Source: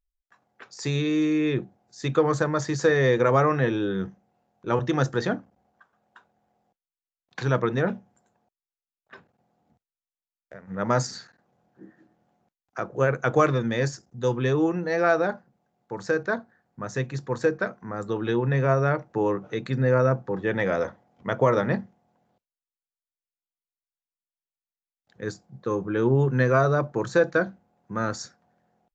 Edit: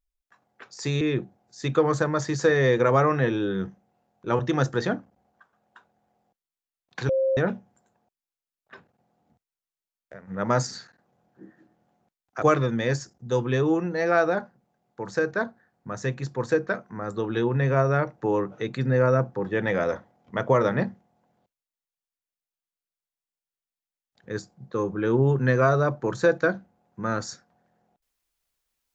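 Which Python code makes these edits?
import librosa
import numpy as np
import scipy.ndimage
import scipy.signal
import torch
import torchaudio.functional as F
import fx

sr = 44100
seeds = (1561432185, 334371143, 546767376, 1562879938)

y = fx.edit(x, sr, fx.cut(start_s=1.01, length_s=0.4),
    fx.bleep(start_s=7.49, length_s=0.28, hz=532.0, db=-19.5),
    fx.cut(start_s=12.82, length_s=0.52), tone=tone)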